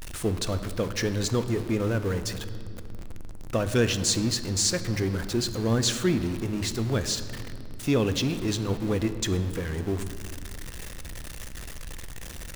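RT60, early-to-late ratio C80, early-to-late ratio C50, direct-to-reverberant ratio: 2.4 s, 12.5 dB, 11.5 dB, 10.0 dB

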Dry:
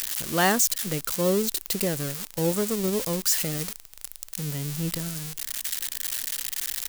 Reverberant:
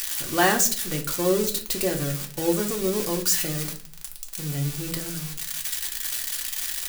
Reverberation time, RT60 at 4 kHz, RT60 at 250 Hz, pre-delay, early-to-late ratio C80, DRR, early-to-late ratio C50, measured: 0.45 s, 0.35 s, 0.60 s, 3 ms, 17.0 dB, 0.0 dB, 11.5 dB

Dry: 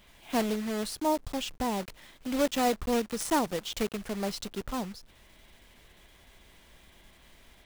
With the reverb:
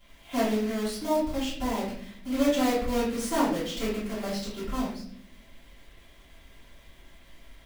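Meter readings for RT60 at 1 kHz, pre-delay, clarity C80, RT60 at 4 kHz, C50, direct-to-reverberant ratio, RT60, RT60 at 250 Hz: 0.50 s, 3 ms, 7.5 dB, 0.50 s, 3.0 dB, −11.0 dB, 0.65 s, 1.1 s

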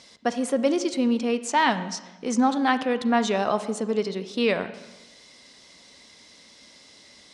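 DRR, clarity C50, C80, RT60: 12.0 dB, 13.0 dB, 14.5 dB, 1.1 s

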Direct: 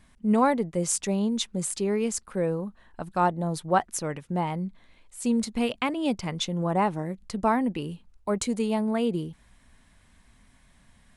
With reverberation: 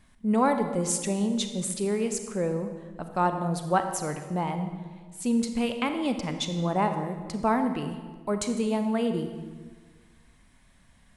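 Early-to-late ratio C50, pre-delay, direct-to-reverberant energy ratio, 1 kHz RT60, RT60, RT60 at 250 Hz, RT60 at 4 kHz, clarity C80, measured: 8.0 dB, 32 ms, 7.0 dB, 1.4 s, 1.5 s, 1.8 s, 1.1 s, 9.0 dB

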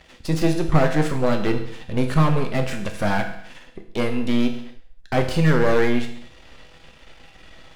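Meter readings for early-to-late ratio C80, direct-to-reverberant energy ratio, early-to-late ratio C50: 11.0 dB, 4.0 dB, 8.5 dB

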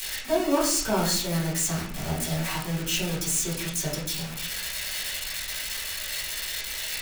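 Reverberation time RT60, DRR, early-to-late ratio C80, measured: 0.50 s, −8.5 dB, 9.0 dB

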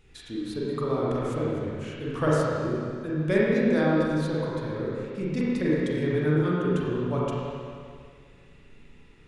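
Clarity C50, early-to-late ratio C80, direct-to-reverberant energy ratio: −3.5 dB, −2.0 dB, −7.0 dB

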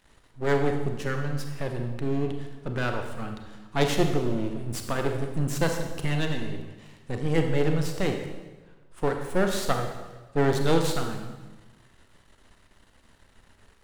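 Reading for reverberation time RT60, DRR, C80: 1.3 s, 4.0 dB, 7.5 dB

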